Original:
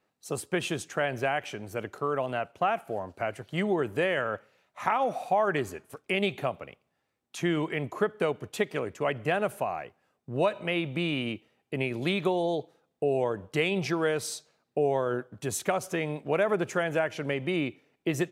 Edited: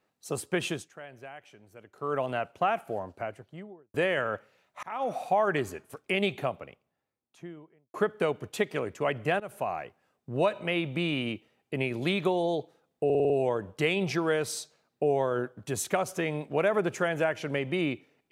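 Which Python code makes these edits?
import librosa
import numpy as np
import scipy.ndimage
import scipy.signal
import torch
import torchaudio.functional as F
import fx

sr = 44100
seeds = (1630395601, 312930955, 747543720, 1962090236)

y = fx.studio_fade_out(x, sr, start_s=2.83, length_s=1.11)
y = fx.studio_fade_out(y, sr, start_s=6.27, length_s=1.67)
y = fx.edit(y, sr, fx.fade_down_up(start_s=0.69, length_s=1.45, db=-16.5, fade_s=0.21),
    fx.fade_in_span(start_s=4.83, length_s=0.31),
    fx.fade_in_from(start_s=9.4, length_s=0.28, floor_db=-20.0),
    fx.stutter(start_s=13.05, slice_s=0.05, count=6), tone=tone)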